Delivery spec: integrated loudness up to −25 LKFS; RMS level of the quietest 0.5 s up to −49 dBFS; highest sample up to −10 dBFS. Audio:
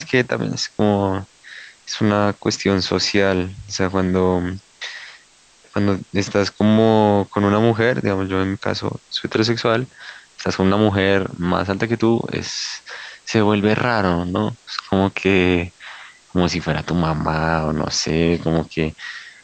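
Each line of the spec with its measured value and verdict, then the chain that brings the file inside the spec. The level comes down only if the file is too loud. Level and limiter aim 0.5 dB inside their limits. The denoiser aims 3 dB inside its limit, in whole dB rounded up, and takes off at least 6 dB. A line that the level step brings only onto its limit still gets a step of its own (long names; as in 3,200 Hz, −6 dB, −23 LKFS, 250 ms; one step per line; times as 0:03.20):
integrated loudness −19.5 LKFS: out of spec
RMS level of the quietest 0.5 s −52 dBFS: in spec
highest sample −3.0 dBFS: out of spec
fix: level −6 dB
brickwall limiter −10.5 dBFS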